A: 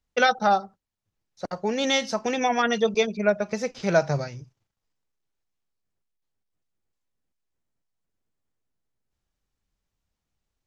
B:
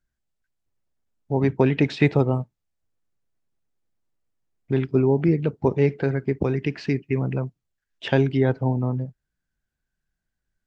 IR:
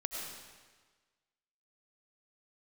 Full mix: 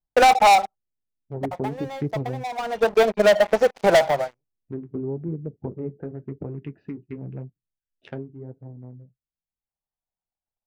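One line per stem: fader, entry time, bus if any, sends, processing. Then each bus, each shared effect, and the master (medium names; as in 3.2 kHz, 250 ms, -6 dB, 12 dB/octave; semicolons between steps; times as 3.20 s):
+3.0 dB, 0.00 s, no send, band-pass filter 760 Hz, Q 2.5; waveshaping leveller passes 5; transient shaper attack +11 dB, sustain -2 dB; auto duck -21 dB, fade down 0.85 s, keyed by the second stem
7.96 s -5.5 dB -> 8.35 s -14 dB, 0.00 s, no send, local Wiener filter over 41 samples; low-pass that closes with the level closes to 600 Hz, closed at -18 dBFS; flange 0.92 Hz, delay 5.9 ms, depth 6.6 ms, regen -46%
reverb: none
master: peak limiter -10.5 dBFS, peak gain reduction 10.5 dB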